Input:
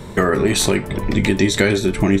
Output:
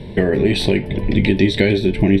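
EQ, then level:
high-frequency loss of the air 71 metres
phaser with its sweep stopped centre 3,000 Hz, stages 4
+2.5 dB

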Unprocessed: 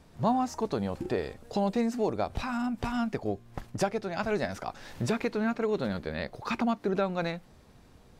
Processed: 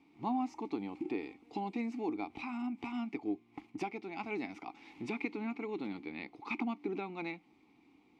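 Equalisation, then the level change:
formant filter u
low-shelf EQ 420 Hz −11 dB
parametric band 920 Hz −11 dB 0.3 octaves
+12.0 dB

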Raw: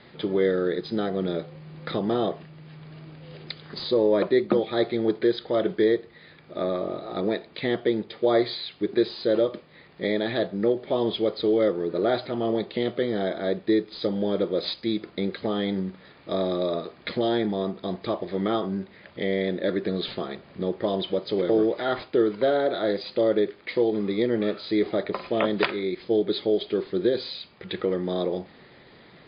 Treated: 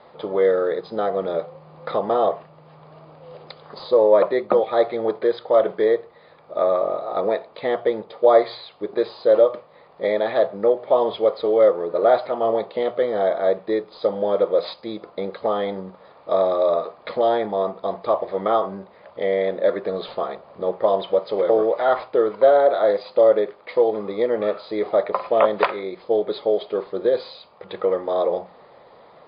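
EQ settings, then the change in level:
flat-topped bell 760 Hz +15 dB
mains-hum notches 60/120/180 Hz
dynamic equaliser 2,000 Hz, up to +7 dB, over −34 dBFS, Q 1.2
−6.0 dB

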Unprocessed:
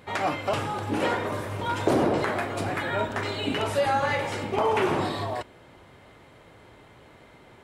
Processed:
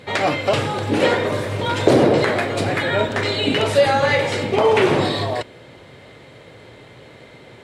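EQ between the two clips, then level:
graphic EQ with 10 bands 125 Hz +10 dB, 250 Hz +4 dB, 500 Hz +10 dB, 2,000 Hz +7 dB, 4,000 Hz +10 dB, 8,000 Hz +6 dB
0.0 dB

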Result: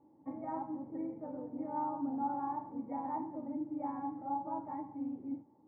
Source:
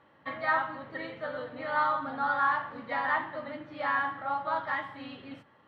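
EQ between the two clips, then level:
formant resonators in series u
+8.0 dB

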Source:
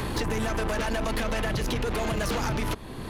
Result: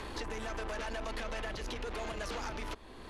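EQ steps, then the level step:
low-pass filter 7,800 Hz 12 dB per octave
parametric band 140 Hz −13.5 dB 1.3 octaves
−9.0 dB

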